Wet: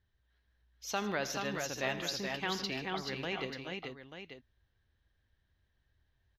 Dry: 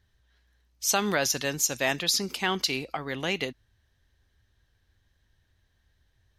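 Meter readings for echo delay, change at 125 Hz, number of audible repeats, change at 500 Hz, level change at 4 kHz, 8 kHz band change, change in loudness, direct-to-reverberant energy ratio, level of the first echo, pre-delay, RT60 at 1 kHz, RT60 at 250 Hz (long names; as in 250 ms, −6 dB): 81 ms, −6.0 dB, 4, −6.5 dB, −10.0 dB, −16.0 dB, −9.5 dB, no reverb audible, −15.5 dB, no reverb audible, no reverb audible, no reverb audible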